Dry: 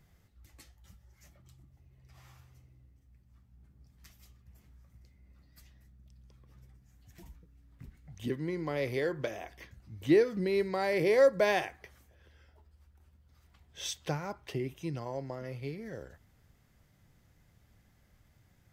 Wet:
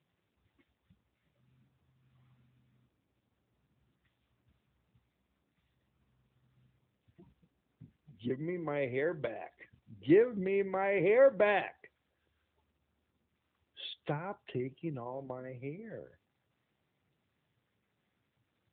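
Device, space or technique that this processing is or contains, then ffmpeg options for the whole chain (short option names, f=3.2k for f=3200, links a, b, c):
mobile call with aggressive noise cancelling: -af "highpass=f=140:p=1,afftdn=nr=15:nf=-49" -ar 8000 -c:a libopencore_amrnb -b:a 10200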